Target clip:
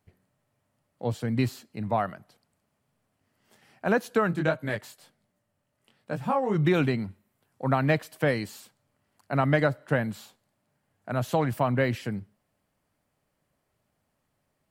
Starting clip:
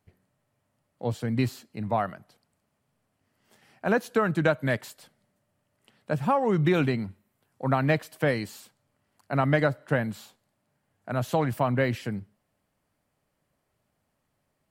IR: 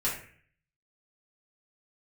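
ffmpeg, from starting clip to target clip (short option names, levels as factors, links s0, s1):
-filter_complex "[0:a]asplit=3[s0][s1][s2];[s0]afade=t=out:st=4.3:d=0.02[s3];[s1]flanger=delay=17:depth=7.3:speed=1.3,afade=t=in:st=4.3:d=0.02,afade=t=out:st=6.54:d=0.02[s4];[s2]afade=t=in:st=6.54:d=0.02[s5];[s3][s4][s5]amix=inputs=3:normalize=0"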